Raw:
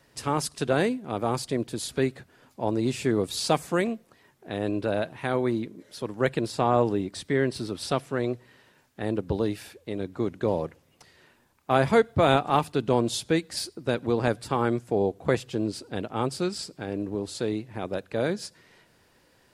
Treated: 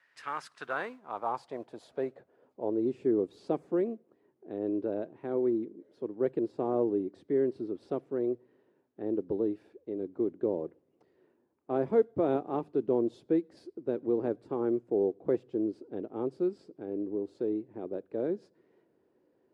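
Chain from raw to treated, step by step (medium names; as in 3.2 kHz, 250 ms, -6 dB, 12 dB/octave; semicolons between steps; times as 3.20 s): modulation noise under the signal 26 dB; band-pass sweep 1.8 kHz -> 360 Hz, 0.11–2.92 s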